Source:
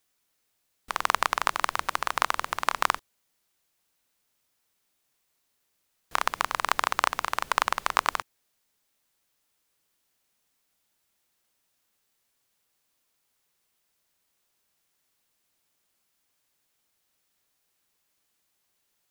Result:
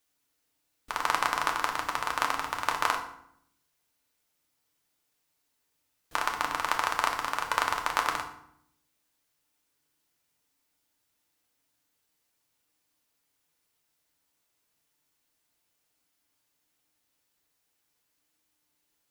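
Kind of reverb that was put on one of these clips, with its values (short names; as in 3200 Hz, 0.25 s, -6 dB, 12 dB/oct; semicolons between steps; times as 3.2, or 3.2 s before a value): FDN reverb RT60 0.69 s, low-frequency decay 1.55×, high-frequency decay 0.75×, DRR 1.5 dB; gain -4 dB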